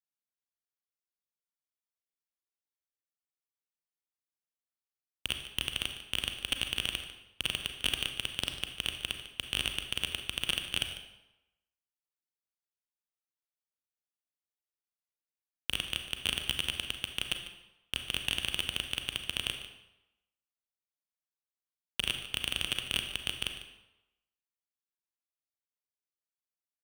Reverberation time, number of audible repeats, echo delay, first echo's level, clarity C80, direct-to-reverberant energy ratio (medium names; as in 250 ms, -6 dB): 0.95 s, 1, 148 ms, -14.5 dB, 8.5 dB, 5.0 dB